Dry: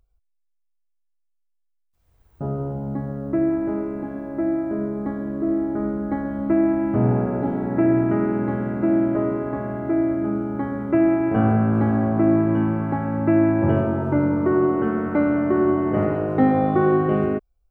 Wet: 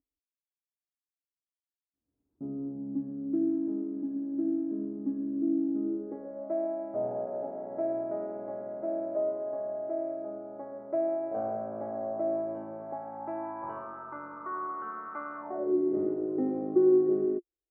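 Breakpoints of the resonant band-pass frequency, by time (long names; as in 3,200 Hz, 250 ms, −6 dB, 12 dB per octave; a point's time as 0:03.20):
resonant band-pass, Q 7.3
0:05.78 280 Hz
0:06.46 620 Hz
0:12.83 620 Hz
0:13.98 1,200 Hz
0:15.37 1,200 Hz
0:15.77 350 Hz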